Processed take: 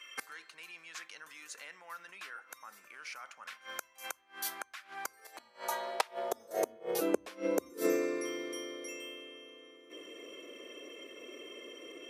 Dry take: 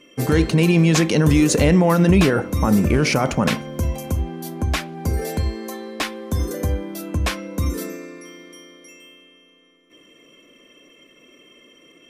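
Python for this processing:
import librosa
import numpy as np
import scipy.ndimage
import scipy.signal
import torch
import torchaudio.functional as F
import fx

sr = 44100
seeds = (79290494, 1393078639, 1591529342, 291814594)

y = fx.ring_mod(x, sr, carrier_hz=160.0, at=(5.36, 7.0), fade=0.02)
y = fx.gate_flip(y, sr, shuts_db=-16.0, range_db=-25)
y = fx.filter_sweep_highpass(y, sr, from_hz=1400.0, to_hz=400.0, start_s=4.88, end_s=7.18, q=2.0)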